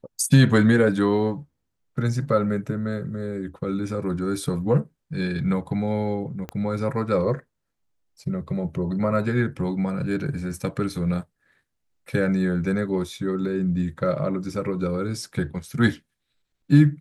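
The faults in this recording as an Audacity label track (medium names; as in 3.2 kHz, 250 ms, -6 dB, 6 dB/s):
6.490000	6.490000	pop -18 dBFS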